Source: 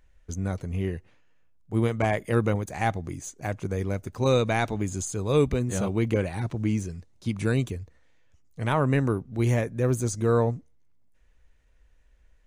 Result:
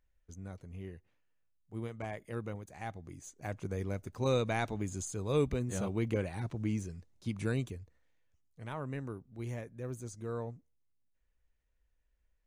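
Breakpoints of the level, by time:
0:02.88 −16 dB
0:03.57 −8 dB
0:07.44 −8 dB
0:08.66 −16.5 dB

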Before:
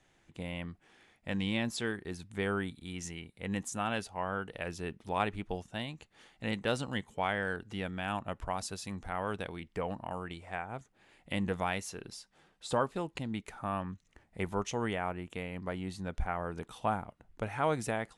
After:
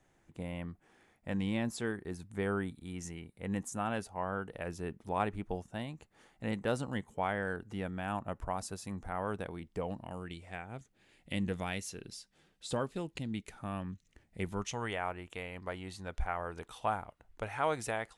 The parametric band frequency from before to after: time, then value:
parametric band −8.5 dB 1.7 octaves
0:09.52 3,400 Hz
0:10.07 980 Hz
0:14.48 980 Hz
0:14.93 190 Hz

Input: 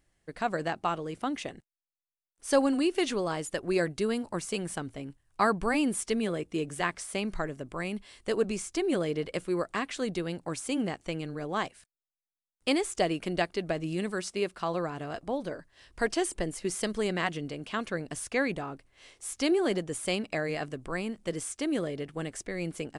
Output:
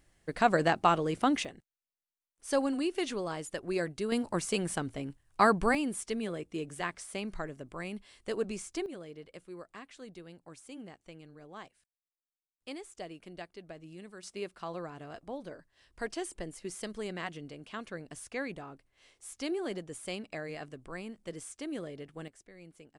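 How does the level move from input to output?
+5 dB
from 0:01.45 −5 dB
from 0:04.12 +1.5 dB
from 0:05.75 −5.5 dB
from 0:08.86 −16 dB
from 0:14.23 −8.5 dB
from 0:22.28 −18.5 dB

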